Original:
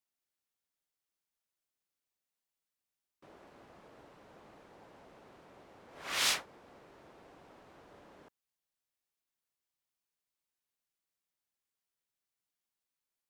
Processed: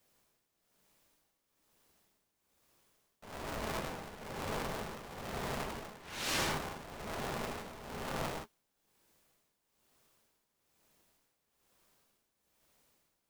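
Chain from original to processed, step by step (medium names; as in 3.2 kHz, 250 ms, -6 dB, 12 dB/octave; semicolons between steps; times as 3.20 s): peaking EQ 91 Hz +12 dB 0.81 oct; reverse; compression 8:1, threshold -52 dBFS, peak gain reduction 24.5 dB; reverse; tremolo 1.1 Hz, depth 77%; in parallel at -5 dB: decimation with a swept rate 27×, swing 60% 0.57 Hz; on the sum: gated-style reverb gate 180 ms flat, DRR -2.5 dB; polarity switched at an audio rate 320 Hz; trim +13.5 dB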